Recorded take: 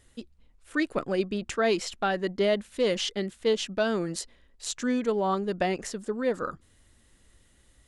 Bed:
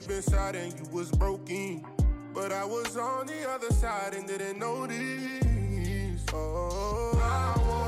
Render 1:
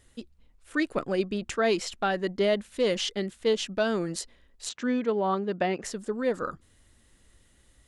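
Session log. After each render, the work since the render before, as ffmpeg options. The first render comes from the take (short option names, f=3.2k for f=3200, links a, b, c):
-filter_complex "[0:a]asettb=1/sr,asplit=3[a][b][c];[a]atrim=end=4.694[d];[b]atrim=start=4.69:end=5.84,asetpts=PTS-STARTPTS,afade=t=in:d=0.004:c=qsin,afade=t=out:st=1.146:d=0.004:c=qsin,highpass=120,lowpass=3.8k[e];[c]atrim=start=5.836[f];[d][e]acrossfade=d=0.004:c1=hsin:c2=qsin[g];[g][f]acrossfade=d=0.004:c1=qsin:c2=hsin"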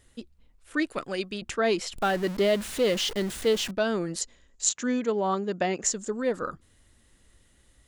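-filter_complex "[0:a]asettb=1/sr,asplit=3[a][b][c];[a]atrim=end=0.904[d];[b]atrim=start=0.9:end=1.42,asetpts=PTS-STARTPTS,afade=t=in:d=0.004:c=qsin,afade=t=out:st=0.516:d=0.004:c=qsin,tiltshelf=f=1.3k:g=-6[e];[c]atrim=start=1.416[f];[d][e]acrossfade=d=0.004:c1=hsin:c2=qsin[g];[g][f]acrossfade=d=0.004:c1=qsin:c2=hsin,asettb=1/sr,asplit=3[h][i][j];[h]atrim=end=1.964[k];[i]atrim=start=1.96:end=3.71,asetpts=PTS-STARTPTS,afade=t=in:d=0.004:c=qsin,afade=t=out:st=1.746:d=0.004:c=qsin,aeval=exprs='val(0)+0.5*0.0237*sgn(val(0))':c=same[l];[j]atrim=start=3.706[m];[k][l]acrossfade=d=0.004:c1=hsin:c2=qsin[n];[n][m]acrossfade=d=0.004:c1=qsin:c2=hsin,asettb=1/sr,asplit=3[o][p][q];[o]atrim=end=4.214[r];[p]atrim=start=4.21:end=6.22,asetpts=PTS-STARTPTS,afade=t=in:d=0.004:c=qsin,afade=t=out:st=2.006:d=0.004:c=qsin,lowpass=f=7k:t=q:w=7.1[s];[q]atrim=start=6.216[t];[r][s]acrossfade=d=0.004:c1=hsin:c2=qsin[u];[u][t]acrossfade=d=0.004:c1=qsin:c2=hsin"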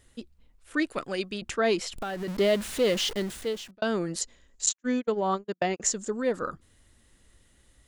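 -filter_complex "[0:a]asettb=1/sr,asplit=3[a][b][c];[a]atrim=end=1.844[d];[b]atrim=start=1.84:end=2.28,asetpts=PTS-STARTPTS,afade=t=in:d=0.004:c=qsin,afade=t=out:st=0.436:d=0.004:c=qsin,acompressor=threshold=-30dB:ratio=6:attack=3.2:release=140:knee=1:detection=peak[e];[c]atrim=start=2.276[f];[d][e]acrossfade=d=0.004:c1=hsin:c2=qsin[g];[g][f]acrossfade=d=0.004:c1=qsin:c2=hsin,asettb=1/sr,asplit=3[h][i][j];[h]atrim=end=4.664[k];[i]atrim=start=4.66:end=5.8,asetpts=PTS-STARTPTS,afade=t=in:d=0.004:c=qsin,afade=t=out:st=1.136:d=0.004:c=qsin,agate=range=-43dB:threshold=-28dB:ratio=16:release=100:detection=peak[l];[j]atrim=start=5.796[m];[k][l]acrossfade=d=0.004:c1=hsin:c2=qsin[n];[n][m]acrossfade=d=0.004:c1=qsin:c2=hsin,asplit=2[o][p];[o]atrim=end=3.82,asetpts=PTS-STARTPTS,afade=t=out:st=3.08:d=0.74[q];[p]atrim=start=3.82,asetpts=PTS-STARTPTS,afade=t=in:d=0.004:c=hsin[r];[q][r]concat=n=2:v=0:a=1"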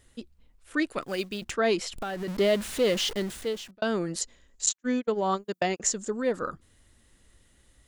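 -filter_complex "[0:a]asplit=3[a][b][c];[a]afade=t=out:st=1.01:d=0.02[d];[b]acrusher=bits=5:mode=log:mix=0:aa=0.000001,afade=t=in:st=1.01:d=0.02,afade=t=out:st=1.51:d=0.02[e];[c]afade=t=in:st=1.51:d=0.02[f];[d][e][f]amix=inputs=3:normalize=0,asettb=1/sr,asplit=3[g][h][i];[g]atrim=end=5.154[j];[h]atrim=start=5.15:end=5.77,asetpts=PTS-STARTPTS,afade=t=in:d=0.004:c=qsin,afade=t=out:st=0.616:d=0.004:c=qsin,highshelf=f=5.6k:g=11[k];[i]atrim=start=5.766[l];[j][k]acrossfade=d=0.004:c1=hsin:c2=qsin[m];[m][l]acrossfade=d=0.004:c1=qsin:c2=hsin"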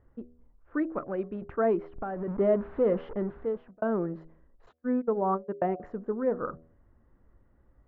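-af "lowpass=f=1.3k:w=0.5412,lowpass=f=1.3k:w=1.3066,bandreject=f=80.74:t=h:w=4,bandreject=f=161.48:t=h:w=4,bandreject=f=242.22:t=h:w=4,bandreject=f=322.96:t=h:w=4,bandreject=f=403.7:t=h:w=4,bandreject=f=484.44:t=h:w=4,bandreject=f=565.18:t=h:w=4,bandreject=f=645.92:t=h:w=4,bandreject=f=726.66:t=h:w=4"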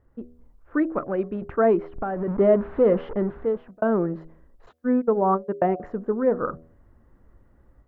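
-af "dynaudnorm=f=120:g=3:m=6.5dB"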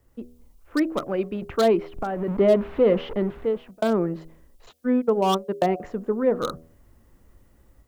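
-filter_complex "[0:a]acrossover=split=120|950[a][b][c];[c]asoftclip=type=hard:threshold=-27.5dB[d];[a][b][d]amix=inputs=3:normalize=0,aexciter=amount=4.4:drive=5.7:freq=2.3k"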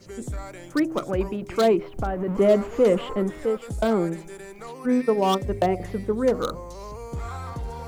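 -filter_complex "[1:a]volume=-6.5dB[a];[0:a][a]amix=inputs=2:normalize=0"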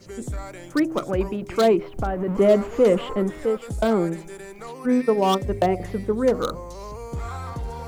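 -af "volume=1.5dB"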